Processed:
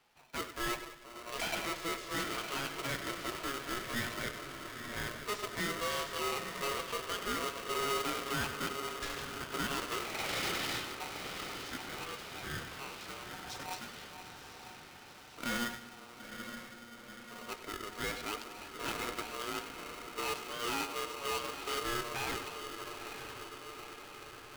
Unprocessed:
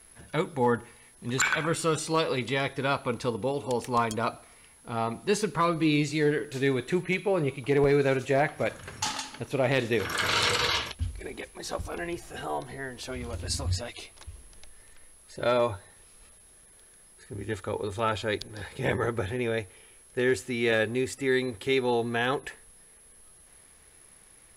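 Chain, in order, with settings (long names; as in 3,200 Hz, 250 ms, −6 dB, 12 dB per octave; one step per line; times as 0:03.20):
high-frequency loss of the air 170 metres
feedback delay with all-pass diffusion 921 ms, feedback 64%, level −9 dB
in parallel at −4 dB: centre clipping without the shift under −24 dBFS
on the sum: low-shelf EQ 350 Hz −11 dB
soft clipping −25 dBFS, distortion −9 dB
on a send: echo with a time of its own for lows and highs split 430 Hz, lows 474 ms, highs 96 ms, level −10 dB
on the sum: ring modulator with a square carrier 830 Hz
level −6 dB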